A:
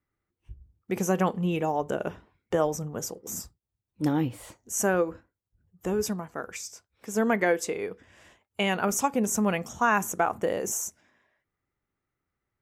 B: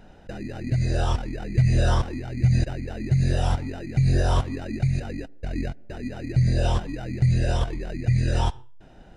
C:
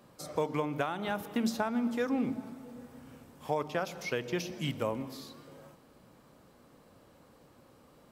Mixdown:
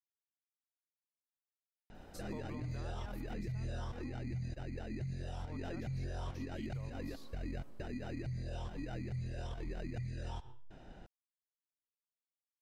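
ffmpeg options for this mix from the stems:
-filter_complex "[1:a]lowpass=8.5k,acompressor=threshold=-28dB:ratio=2,adelay=1900,volume=-5dB[a];[2:a]alimiter=level_in=1.5dB:limit=-24dB:level=0:latency=1:release=104,volume=-1.5dB,adelay=1950,afade=t=out:st=3.15:d=0.27:silence=0.398107,afade=t=in:st=6.41:d=0.77:silence=0.375837[b];[a][b]amix=inputs=2:normalize=0,alimiter=level_in=9.5dB:limit=-24dB:level=0:latency=1:release=121,volume=-9.5dB"

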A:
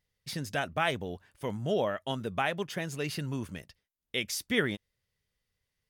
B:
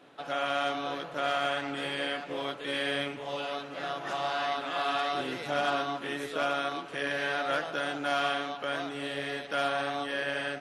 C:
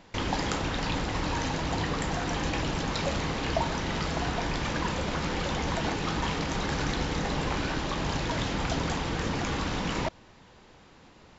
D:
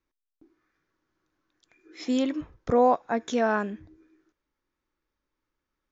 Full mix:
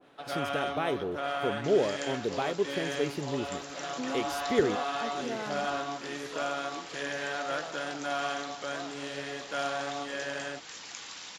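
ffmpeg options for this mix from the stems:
-filter_complex "[0:a]equalizer=f=380:w=1.5:g=13,volume=-5dB[a];[1:a]volume=-2.5dB[b];[2:a]aderivative,adelay=1500,volume=0.5dB[c];[3:a]acompressor=threshold=-22dB:ratio=6,adelay=1900,volume=-10dB[d];[a][b][c][d]amix=inputs=4:normalize=0,adynamicequalizer=threshold=0.00708:dfrequency=1600:dqfactor=0.7:tfrequency=1600:tqfactor=0.7:attack=5:release=100:ratio=0.375:range=2:mode=cutabove:tftype=highshelf"

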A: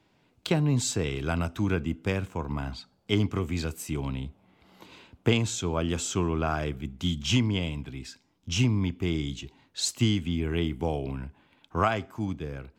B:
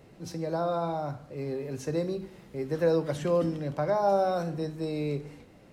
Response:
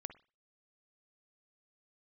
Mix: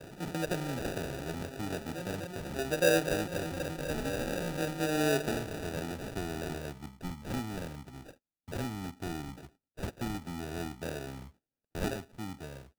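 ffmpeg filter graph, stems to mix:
-filter_complex "[0:a]lowshelf=f=96:g=-4,volume=-7.5dB,asplit=2[a][b];[1:a]lowshelf=f=170:g=-6.5,aphaser=in_gain=1:out_gain=1:delay=1:decay=0.63:speed=0.38:type=triangular,volume=0dB,asplit=2[c][d];[d]volume=-12.5dB[e];[b]apad=whole_len=252287[f];[c][f]sidechaincompress=threshold=-44dB:ratio=5:attack=16:release=652[g];[e]aecho=0:1:248|496|744|992|1240|1488|1736|1984|2232:1|0.57|0.325|0.185|0.106|0.0602|0.0343|0.0195|0.0111[h];[a][g][h]amix=inputs=3:normalize=0,agate=range=-24dB:threshold=-56dB:ratio=16:detection=peak,acrossover=split=240[i][j];[i]acompressor=threshold=-40dB:ratio=6[k];[k][j]amix=inputs=2:normalize=0,acrusher=samples=41:mix=1:aa=0.000001"

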